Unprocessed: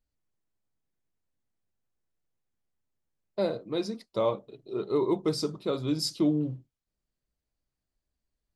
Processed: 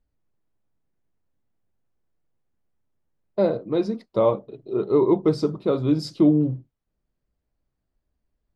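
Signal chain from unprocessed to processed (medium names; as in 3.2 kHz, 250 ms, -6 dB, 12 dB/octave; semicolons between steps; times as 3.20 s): low-pass 1.1 kHz 6 dB/octave; trim +8.5 dB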